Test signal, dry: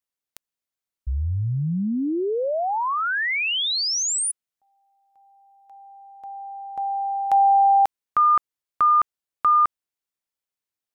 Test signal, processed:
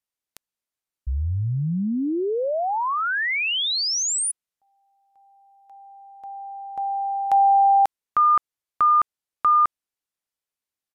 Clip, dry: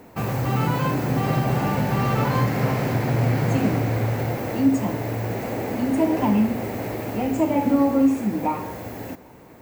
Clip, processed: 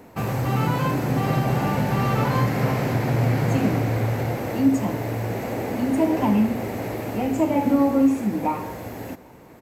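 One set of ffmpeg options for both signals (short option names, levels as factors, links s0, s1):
-af "aresample=32000,aresample=44100"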